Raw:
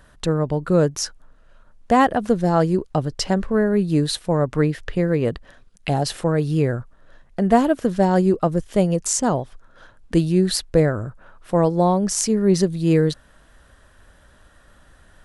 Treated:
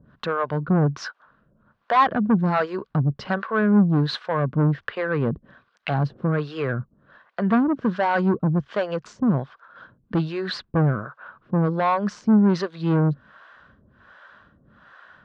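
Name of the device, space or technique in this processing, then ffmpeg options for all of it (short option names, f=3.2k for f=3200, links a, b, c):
guitar amplifier with harmonic tremolo: -filter_complex "[0:a]acrossover=split=460[a][b];[a]aeval=exprs='val(0)*(1-1/2+1/2*cos(2*PI*1.3*n/s))':c=same[c];[b]aeval=exprs='val(0)*(1-1/2-1/2*cos(2*PI*1.3*n/s))':c=same[d];[c][d]amix=inputs=2:normalize=0,asoftclip=type=tanh:threshold=-20.5dB,highpass=98,equalizer=f=140:t=q:w=4:g=6,equalizer=f=210:t=q:w=4:g=7,equalizer=f=1.1k:t=q:w=4:g=9,equalizer=f=1.5k:t=q:w=4:g=9,lowpass=f=4.1k:w=0.5412,lowpass=f=4.1k:w=1.3066,volume=3dB"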